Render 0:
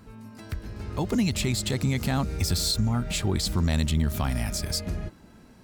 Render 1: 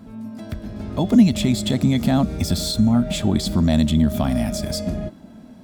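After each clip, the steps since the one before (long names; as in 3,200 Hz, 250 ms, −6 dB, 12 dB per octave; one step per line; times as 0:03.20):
hum removal 379.5 Hz, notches 36
hollow resonant body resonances 230/620/3,400 Hz, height 13 dB, ringing for 25 ms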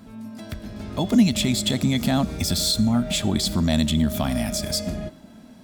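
tilt shelving filter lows −4 dB, about 1,300 Hz
on a send at −23 dB: convolution reverb RT60 0.35 s, pre-delay 83 ms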